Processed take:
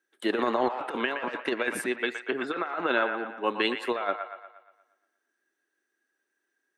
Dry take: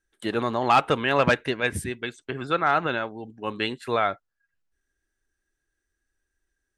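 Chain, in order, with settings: HPF 260 Hz 24 dB/oct; bell 7600 Hz -6.5 dB 1.8 oct; negative-ratio compressor -27 dBFS, ratio -0.5; band-limited delay 0.118 s, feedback 50%, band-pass 1300 Hz, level -6 dB

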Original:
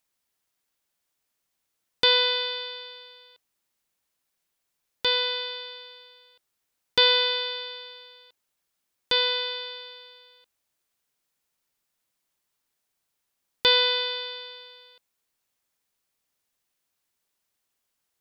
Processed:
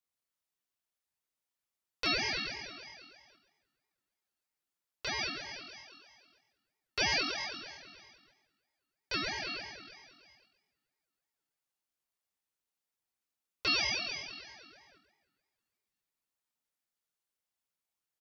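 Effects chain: spring tank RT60 3.2 s, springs 36 ms, chirp 65 ms, DRR 18.5 dB; chorus voices 6, 0.14 Hz, delay 27 ms, depth 1.3 ms; frequency-shifting echo 0.133 s, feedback 37%, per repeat +42 Hz, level -9.5 dB; ring modulator with a swept carrier 1100 Hz, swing 30%, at 3.1 Hz; gain -6 dB

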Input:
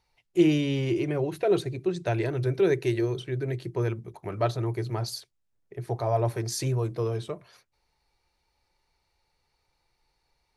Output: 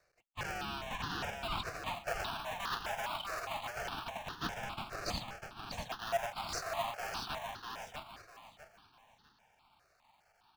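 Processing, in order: half-waves squared off; LPF 6500 Hz 24 dB/oct; notch 2000 Hz, Q 6.9; reverse; compressor 6:1, threshold -35 dBFS, peak gain reduction 20 dB; reverse; elliptic high-pass 670 Hz; in parallel at -4 dB: decimation with a swept rate 29×, swing 100% 0.27 Hz; on the sum: feedback echo 0.648 s, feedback 28%, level -4 dB; step phaser 4.9 Hz 890–2300 Hz; gain +5 dB

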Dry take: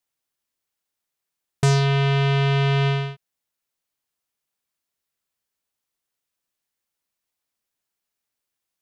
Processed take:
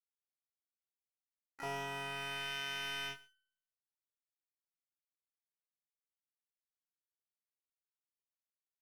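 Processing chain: band-pass sweep 750 Hz -> 1500 Hz, 1.45–2.54; limiter -29.5 dBFS, peak gain reduction 10.5 dB; hard clip -36 dBFS, distortion -10 dB; echo 0.122 s -17.5 dB; harmoniser +5 st -11 dB, +12 st -3 dB; power-law curve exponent 1.4; resonator 380 Hz, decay 0.67 s, mix 80%; sample leveller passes 1; doubler 22 ms -6 dB; gain +14 dB

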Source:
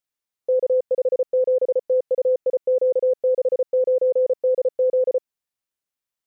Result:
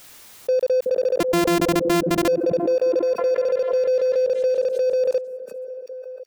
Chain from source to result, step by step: 1.2–2.28 sample sorter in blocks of 128 samples; in parallel at -9.5 dB: wavefolder -31.5 dBFS; on the sum: delay with a stepping band-pass 0.374 s, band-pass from 220 Hz, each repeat 0.7 oct, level -10.5 dB; backwards sustainer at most 58 dB/s

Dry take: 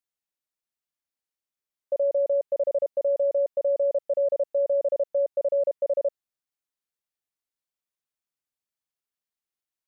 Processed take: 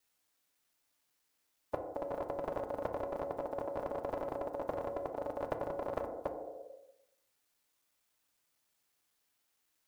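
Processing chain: slices in reverse order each 92 ms, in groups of 3; low shelf 360 Hz -3.5 dB; level quantiser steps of 18 dB; FDN reverb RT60 0.85 s, low-frequency decay 1.05×, high-frequency decay 0.35×, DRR 6 dB; spectral compressor 4:1; gain +6 dB

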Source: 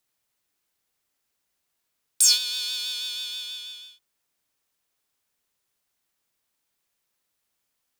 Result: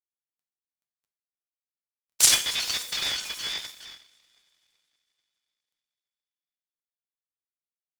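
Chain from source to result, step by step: random spectral dropouts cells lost 77%; high shelf 6900 Hz +7 dB; bit-crush 11-bit; two-slope reverb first 0.49 s, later 3.6 s, from -27 dB, DRR 3.5 dB; noise-modulated delay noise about 1300 Hz, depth 0.031 ms; gain +3.5 dB

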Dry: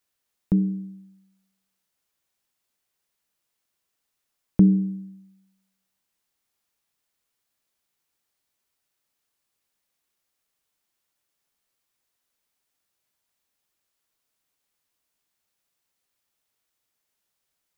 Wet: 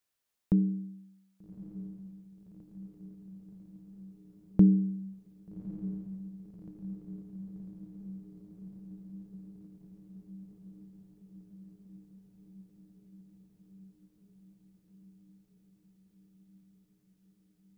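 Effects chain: diffused feedback echo 1.199 s, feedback 74%, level -14 dB; gain -4.5 dB

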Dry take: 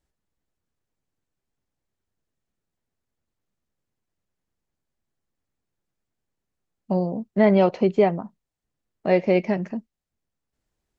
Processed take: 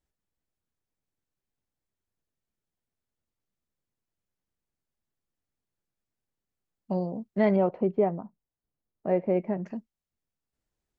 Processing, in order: 7.56–9.66 LPF 1200 Hz 12 dB/oct; gain -6 dB

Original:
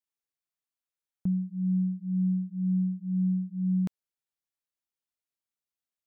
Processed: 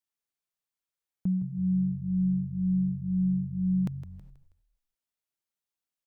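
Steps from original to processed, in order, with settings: frequency-shifting echo 0.161 s, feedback 43%, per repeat -49 Hz, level -12 dB; on a send at -23 dB: reverb, pre-delay 3 ms

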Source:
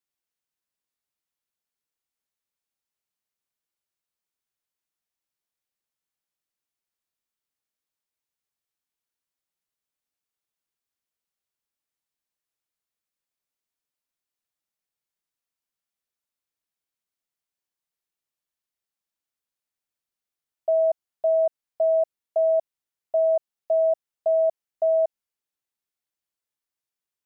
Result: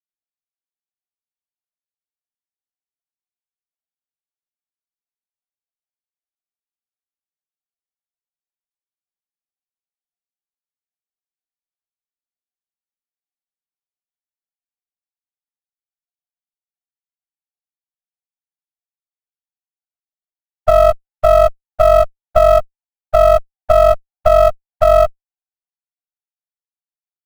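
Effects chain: sine-wave speech; low-pass opened by the level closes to 510 Hz, open at -18.5 dBFS; Chebyshev low-pass 540 Hz, order 2; compressor 16:1, threshold -31 dBFS, peak gain reduction 12 dB; short-mantissa float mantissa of 4-bit; maximiser +26.5 dB; running maximum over 17 samples

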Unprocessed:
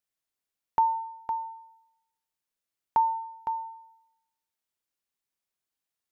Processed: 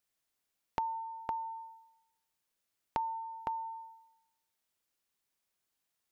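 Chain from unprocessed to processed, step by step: compressor 4:1, threshold -40 dBFS, peak gain reduction 16.5 dB; gain +4 dB

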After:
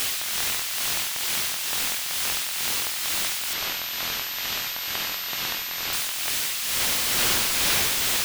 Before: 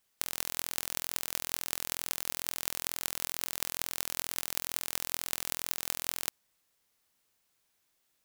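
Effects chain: switching spikes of -13 dBFS; HPF 600 Hz 24 dB/oct; bell 3100 Hz +6 dB 1.9 oct; AGC gain up to 7 dB; tremolo 2.2 Hz, depth 49%; overdrive pedal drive 16 dB, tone 1100 Hz, clips at -0.5 dBFS; 3.53–5.93 pulse-width modulation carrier 13000 Hz; gain +1.5 dB

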